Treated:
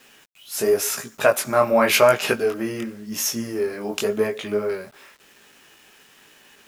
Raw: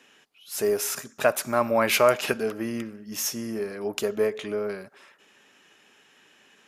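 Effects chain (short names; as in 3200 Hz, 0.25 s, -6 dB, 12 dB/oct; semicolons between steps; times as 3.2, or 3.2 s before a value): chorus 0.92 Hz, delay 17 ms, depth 6.5 ms; requantised 10-bit, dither none; gain +7.5 dB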